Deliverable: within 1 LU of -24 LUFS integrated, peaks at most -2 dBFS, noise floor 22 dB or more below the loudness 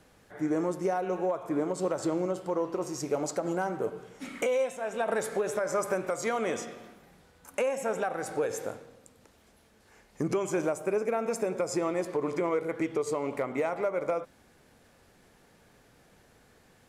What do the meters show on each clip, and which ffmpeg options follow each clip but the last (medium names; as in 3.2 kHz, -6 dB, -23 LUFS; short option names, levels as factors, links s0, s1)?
loudness -31.0 LUFS; peak level -19.0 dBFS; loudness target -24.0 LUFS
-> -af "volume=2.24"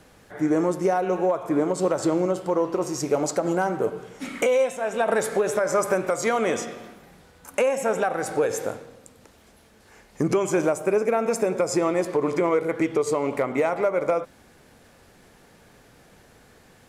loudness -24.0 LUFS; peak level -12.0 dBFS; noise floor -54 dBFS